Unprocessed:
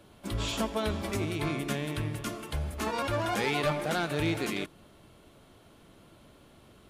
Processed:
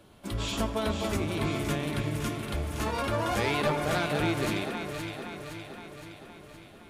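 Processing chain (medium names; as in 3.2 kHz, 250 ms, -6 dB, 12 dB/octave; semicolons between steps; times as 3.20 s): echo whose repeats swap between lows and highs 258 ms, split 1.6 kHz, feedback 76%, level -4 dB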